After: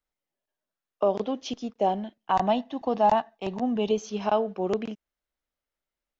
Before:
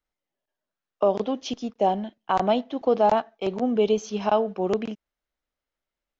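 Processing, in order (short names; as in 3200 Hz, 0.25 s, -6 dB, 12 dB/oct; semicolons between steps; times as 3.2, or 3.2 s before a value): 2.31–3.91 comb 1.1 ms, depth 48%; gain -2.5 dB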